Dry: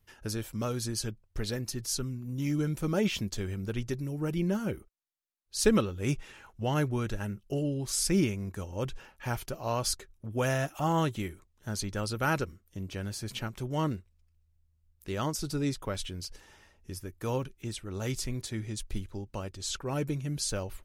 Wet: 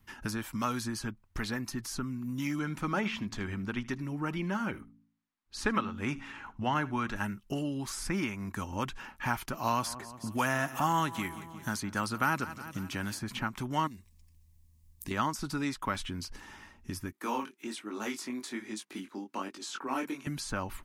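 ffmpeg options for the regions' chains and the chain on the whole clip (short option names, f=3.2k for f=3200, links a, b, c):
-filter_complex "[0:a]asettb=1/sr,asplit=3[a][b][c];[a]atrim=end=2.594[d];[b]atrim=start=2.59:end=7.16,asetpts=PTS-STARTPTS,afade=t=in:d=0.004:c=qsin,afade=t=out:st=4.566:d=0.004:c=qsin,aemphasis=mode=reproduction:type=50kf,bandreject=f=55.46:t=h:w=4,bandreject=f=110.92:t=h:w=4,bandreject=f=166.38:t=h:w=4,bandreject=f=221.84:t=h:w=4,bandreject=f=277.3:t=h:w=4,aecho=1:1:77:0.0841,atrim=end_sample=201537[e];[c]atrim=start=7.156[f];[d][e]acrossfade=d=0.004:c1=hsin:c2=qsin[g];[g][f]acrossfade=d=0.004:c1=qsin:c2=hsin,asettb=1/sr,asplit=3[h][i][j];[h]atrim=end=9.574[k];[i]atrim=start=9.57:end=13.19,asetpts=PTS-STARTPTS,afade=t=in:d=0.004:c=qsin,afade=t=out:st=3.616:d=0.004:c=qsin,highpass=73,highshelf=f=5.3k:g=9,aecho=1:1:178|356|534|712:0.106|0.0583|0.032|0.0176,atrim=end_sample=159642[l];[j]atrim=start=13.186[m];[k][l]acrossfade=d=0.004:c1=hsin:c2=qsin[n];[n][m]acrossfade=d=0.004:c1=qsin:c2=hsin,asettb=1/sr,asplit=3[o][p][q];[o]atrim=end=13.874[r];[p]atrim=start=13.87:end=15.11,asetpts=PTS-STARTPTS,afade=t=in:d=0.004:c=qsin,afade=t=out:st=1.236:d=0.004:c=qsin,bass=f=250:g=4,treble=f=4k:g=13,acompressor=threshold=-41dB:ratio=6:attack=3.2:release=140:knee=1:detection=peak,asuperstop=centerf=1400:order=4:qfactor=3.4[s];[q]atrim=start=15.106[t];[r][s]acrossfade=d=0.004:c1=hsin:c2=qsin[u];[u][t]acrossfade=d=0.004:c1=qsin:c2=hsin,asettb=1/sr,asplit=3[v][w][x];[v]atrim=end=17.124[y];[w]atrim=start=17.12:end=20.27,asetpts=PTS-STARTPTS,afade=t=in:d=0.004:c=qsin,afade=t=out:st=3.146:d=0.004:c=qsin,highpass=f=270:w=0.5412,highpass=f=270:w=1.3066,flanger=delay=18.5:depth=5.5:speed=1.2[z];[x]atrim=start=20.266[aa];[y][z]acrossfade=d=0.004:c1=hsin:c2=qsin[ab];[ab][aa]acrossfade=d=0.004:c1=qsin:c2=hsin,equalizer=f=250:t=o:w=1:g=12,equalizer=f=500:t=o:w=1:g=-8,equalizer=f=1k:t=o:w=1:g=8,equalizer=f=2k:t=o:w=1:g=4,acrossover=split=630|1900[ac][ad][ae];[ac]acompressor=threshold=-39dB:ratio=4[af];[ad]acompressor=threshold=-31dB:ratio=4[ag];[ae]acompressor=threshold=-44dB:ratio=4[ah];[af][ag][ah]amix=inputs=3:normalize=0,volume=3dB"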